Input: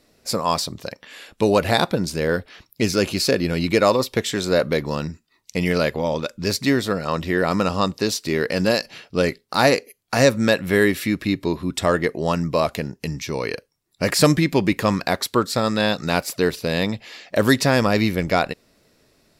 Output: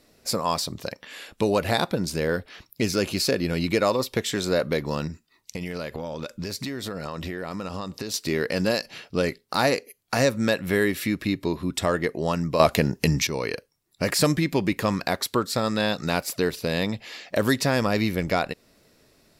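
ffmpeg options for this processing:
-filter_complex "[0:a]asettb=1/sr,asplit=3[s0][s1][s2];[s0]atrim=end=5.074[s3];[s1]atrim=start=5.07:end=8.14,asetpts=PTS-STARTPTS,afade=t=in:d=0.004:c=qsin,afade=t=out:st=3.066:d=0.004:c=qsin,acompressor=threshold=0.0447:ratio=12:attack=3.2:release=140:knee=1:detection=peak[s4];[s2]atrim=start=8.136[s5];[s3][s4]acrossfade=d=0.004:c1=hsin:c2=qsin[s6];[s6][s5]acrossfade=d=0.004:c1=qsin:c2=hsin,asplit=3[s7][s8][s9];[s7]atrim=end=12.602[s10];[s8]atrim=start=12.598:end=13.272,asetpts=PTS-STARTPTS,volume=3.76[s11];[s9]atrim=start=13.268[s12];[s10][s11]acrossfade=d=0.004:c1=hsin:c2=hsin[s13];[s13][s12]acrossfade=d=0.004:c1=hsin:c2=hsin,equalizer=f=14000:t=o:w=0.77:g=2.5,acompressor=threshold=0.0447:ratio=1.5"

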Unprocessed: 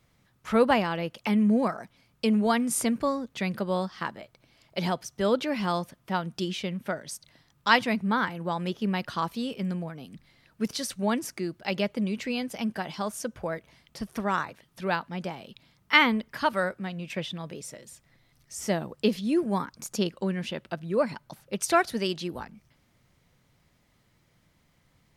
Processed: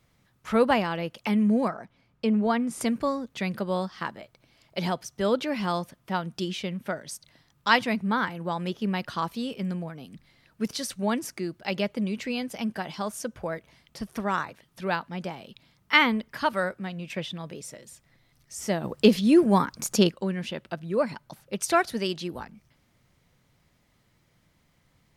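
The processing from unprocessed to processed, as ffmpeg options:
-filter_complex "[0:a]asettb=1/sr,asplit=3[s0][s1][s2];[s0]atrim=end=1.694[s3];[s1]atrim=start=1.69:end=2.81,asetpts=PTS-STARTPTS,afade=t=in:d=0.004:c=qsin,afade=t=out:st=1.116:d=0.004:c=qsin,lowpass=f=2100:p=1[s4];[s2]atrim=start=2.806[s5];[s3][s4]acrossfade=d=0.004:c1=hsin:c2=qsin[s6];[s6][s5]acrossfade=d=0.004:c1=qsin:c2=hsin,asplit=3[s7][s8][s9];[s7]afade=t=out:st=18.83:d=0.02[s10];[s8]acontrast=88,afade=t=in:st=18.83:d=0.02,afade=t=out:st=20.1:d=0.02[s11];[s9]afade=t=in:st=20.1:d=0.02[s12];[s10][s11][s12]amix=inputs=3:normalize=0"

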